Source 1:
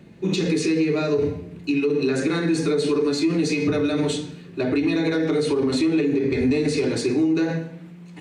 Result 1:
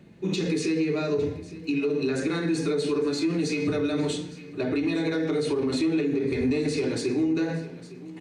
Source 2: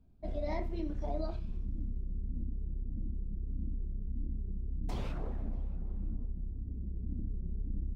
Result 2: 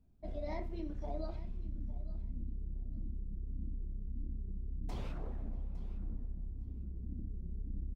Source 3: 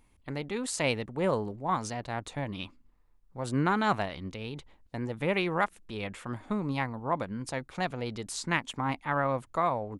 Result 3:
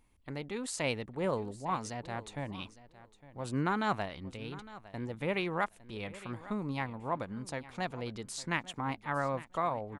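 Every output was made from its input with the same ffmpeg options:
-af "aecho=1:1:858|1716:0.133|0.0213,volume=0.596"

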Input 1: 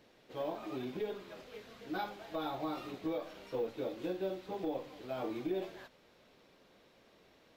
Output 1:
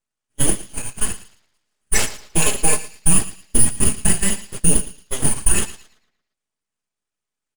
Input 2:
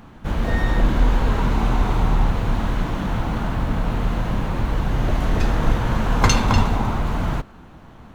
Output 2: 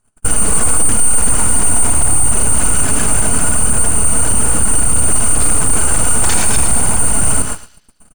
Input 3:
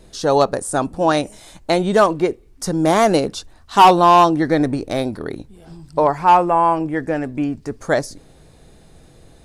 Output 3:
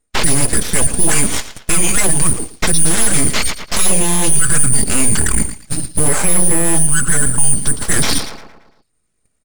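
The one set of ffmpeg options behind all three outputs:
-filter_complex "[0:a]afftfilt=real='real(if(lt(b,272),68*(eq(floor(b/68),0)*3+eq(floor(b/68),1)*2+eq(floor(b/68),2)*1+eq(floor(b/68),3)*0)+mod(b,68),b),0)':imag='imag(if(lt(b,272),68*(eq(floor(b/68),0)*3+eq(floor(b/68),1)*2+eq(floor(b/68),2)*1+eq(floor(b/68),3)*0)+mod(b,68),b),0)':win_size=2048:overlap=0.75,agate=range=0.00447:threshold=0.0141:ratio=16:detection=peak,volume=5.96,asoftclip=hard,volume=0.168,lowpass=f=4300:w=0.5412,lowpass=f=4300:w=1.3066,lowshelf=f=130:g=10,aecho=1:1:4.7:0.67,areverse,acompressor=threshold=0.02:ratio=5,areverse,lowshelf=f=460:g=-5.5,asplit=2[s0][s1];[s1]adelay=113,lowpass=f=1800:p=1,volume=0.355,asplit=2[s2][s3];[s3]adelay=113,lowpass=f=1800:p=1,volume=0.52,asplit=2[s4][s5];[s5]adelay=113,lowpass=f=1800:p=1,volume=0.52,asplit=2[s6][s7];[s7]adelay=113,lowpass=f=1800:p=1,volume=0.52,asplit=2[s8][s9];[s9]adelay=113,lowpass=f=1800:p=1,volume=0.52,asplit=2[s10][s11];[s11]adelay=113,lowpass=f=1800:p=1,volume=0.52[s12];[s2][s4][s6][s8][s10][s12]amix=inputs=6:normalize=0[s13];[s0][s13]amix=inputs=2:normalize=0,acrossover=split=330|3000[s14][s15][s16];[s15]acompressor=threshold=0.01:ratio=6[s17];[s14][s17][s16]amix=inputs=3:normalize=0,aeval=exprs='abs(val(0))':c=same,alimiter=level_in=33.5:limit=0.891:release=50:level=0:latency=1,volume=0.891"

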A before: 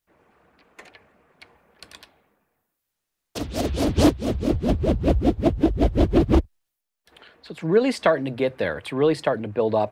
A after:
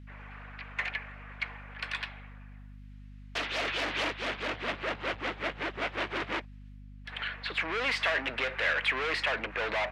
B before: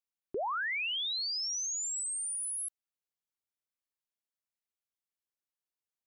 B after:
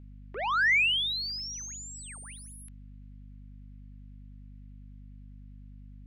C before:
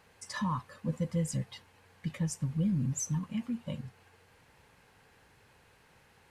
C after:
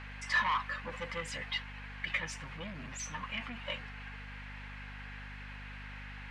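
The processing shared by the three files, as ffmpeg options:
-filter_complex "[0:a]asplit=2[s0][s1];[s1]highpass=f=720:p=1,volume=50.1,asoftclip=type=tanh:threshold=0.473[s2];[s0][s2]amix=inputs=2:normalize=0,lowpass=f=2400:p=1,volume=0.501,bandpass=f=2200:t=q:w=1.4:csg=0,aeval=exprs='val(0)+0.01*(sin(2*PI*50*n/s)+sin(2*PI*2*50*n/s)/2+sin(2*PI*3*50*n/s)/3+sin(2*PI*4*50*n/s)/4+sin(2*PI*5*50*n/s)/5)':c=same,volume=0.473"

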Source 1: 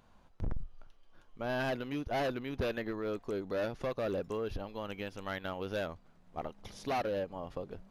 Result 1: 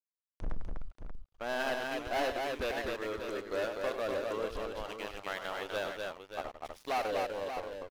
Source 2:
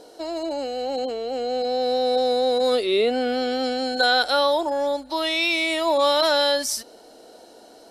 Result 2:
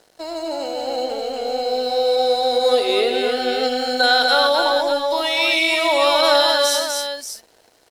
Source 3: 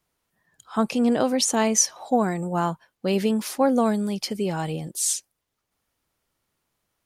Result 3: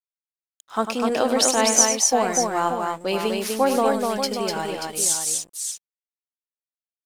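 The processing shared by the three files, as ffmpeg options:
-af "equalizer=f=140:t=o:w=1.8:g=-14.5,aeval=exprs='sgn(val(0))*max(abs(val(0))-0.00447,0)':c=same,aecho=1:1:99|248|583:0.355|0.668|0.398,volume=1.5"

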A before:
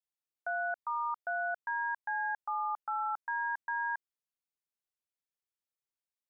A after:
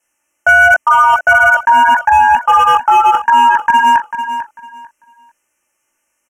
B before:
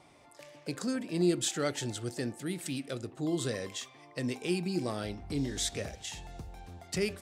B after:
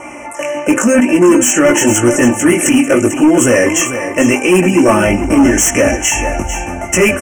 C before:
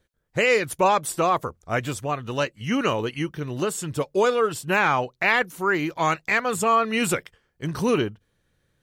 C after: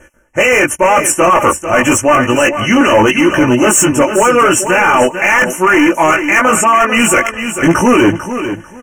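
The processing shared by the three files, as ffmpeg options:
-filter_complex "[0:a]lowpass=10000,lowshelf=f=170:g=-9.5,aecho=1:1:3.4:0.63,areverse,acompressor=threshold=0.0282:ratio=20,areverse,flanger=delay=16:depth=4.5:speed=0.88,asoftclip=type=hard:threshold=0.0158,asuperstop=centerf=4100:order=12:qfactor=1.6,asplit=2[s0][s1];[s1]aecho=0:1:445|890|1335:0.282|0.0564|0.0113[s2];[s0][s2]amix=inputs=2:normalize=0,alimiter=level_in=47.3:limit=0.891:release=50:level=0:latency=1,volume=0.891"

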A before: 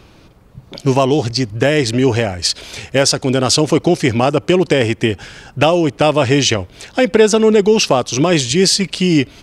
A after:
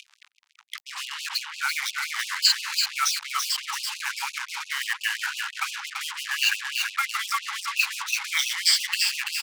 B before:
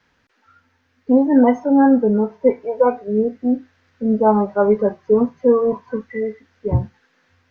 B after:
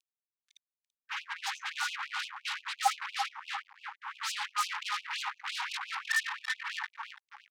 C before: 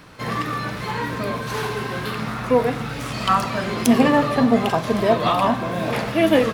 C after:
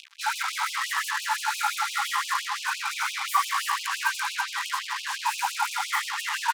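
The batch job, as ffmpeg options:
-filter_complex "[0:a]afftfilt=real='re*pow(10,16/40*sin(2*PI*(1.5*log(max(b,1)*sr/1024/100)/log(2)-(-0.77)*(pts-256)/sr)))':imag='im*pow(10,16/40*sin(2*PI*(1.5*log(max(b,1)*sr/1024/100)/log(2)-(-0.77)*(pts-256)/sr)))':win_size=1024:overlap=0.75,acrossover=split=190 2000:gain=0.112 1 0.0794[s0][s1][s2];[s0][s1][s2]amix=inputs=3:normalize=0,afreqshift=-190,asoftclip=type=tanh:threshold=0.891,areverse,acompressor=threshold=0.0794:ratio=5,areverse,lowpass=9200,highshelf=f=2500:g=12,bandreject=f=50:t=h:w=6,bandreject=f=100:t=h:w=6,bandreject=f=150:t=h:w=6,bandreject=f=200:t=h:w=6,bandreject=f=250:t=h:w=6,aecho=1:1:335|670|1005|1340|1675:0.531|0.228|0.0982|0.0422|0.0181,acrossover=split=120[s3][s4];[s4]acompressor=mode=upward:threshold=0.0224:ratio=2.5[s5];[s3][s5]amix=inputs=2:normalize=0,acrusher=bits=4:mix=0:aa=0.5,afftfilt=real='re*gte(b*sr/1024,770*pow(2500/770,0.5+0.5*sin(2*PI*5.8*pts/sr)))':imag='im*gte(b*sr/1024,770*pow(2500/770,0.5+0.5*sin(2*PI*5.8*pts/sr)))':win_size=1024:overlap=0.75,volume=1.58"

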